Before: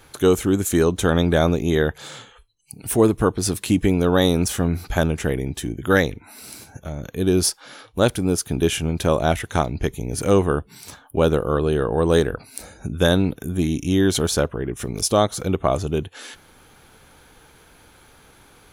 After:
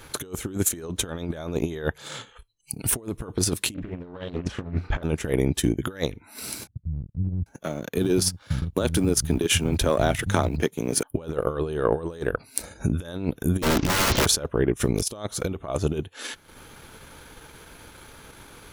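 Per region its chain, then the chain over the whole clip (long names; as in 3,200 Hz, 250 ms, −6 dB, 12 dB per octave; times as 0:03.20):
0:03.74–0:05.03: low-pass filter 2,600 Hz + double-tracking delay 34 ms −2.5 dB + highs frequency-modulated by the lows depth 0.54 ms
0:06.67–0:11.03: mu-law and A-law mismatch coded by A + downward compressor 12 to 1, threshold −18 dBFS + multiband delay without the direct sound lows, highs 790 ms, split 160 Hz
0:13.62–0:14.26: linear delta modulator 32 kbit/s, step −30.5 dBFS + wrap-around overflow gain 21.5 dB + low-shelf EQ 390 Hz +7 dB
whole clip: notch filter 760 Hz, Q 12; transient designer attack +2 dB, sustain −10 dB; compressor whose output falls as the input rises −24 dBFS, ratio −0.5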